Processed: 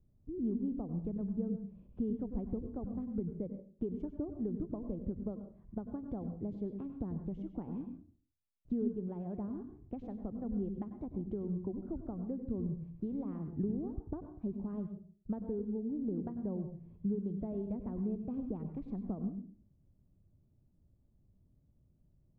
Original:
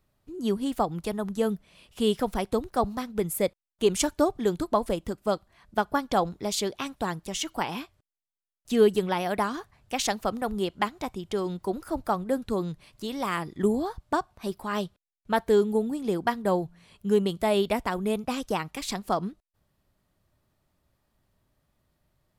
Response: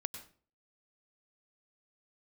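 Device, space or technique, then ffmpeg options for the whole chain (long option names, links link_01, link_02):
television next door: -filter_complex "[0:a]acompressor=threshold=-35dB:ratio=4,lowpass=260[link_01];[1:a]atrim=start_sample=2205[link_02];[link_01][link_02]afir=irnorm=-1:irlink=0,volume=5.5dB"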